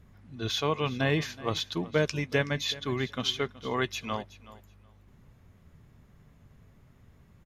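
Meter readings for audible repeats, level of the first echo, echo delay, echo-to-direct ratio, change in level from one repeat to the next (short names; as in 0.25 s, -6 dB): 2, -18.0 dB, 0.374 s, -18.0 dB, -15.5 dB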